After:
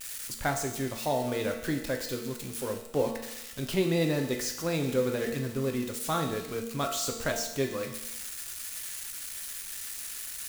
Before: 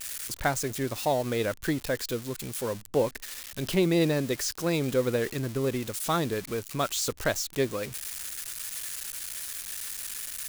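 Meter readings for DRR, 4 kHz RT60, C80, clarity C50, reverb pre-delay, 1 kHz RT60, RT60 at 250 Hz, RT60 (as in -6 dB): 2.5 dB, 0.90 s, 9.5 dB, 7.0 dB, 4 ms, 0.90 s, 0.90 s, 0.90 s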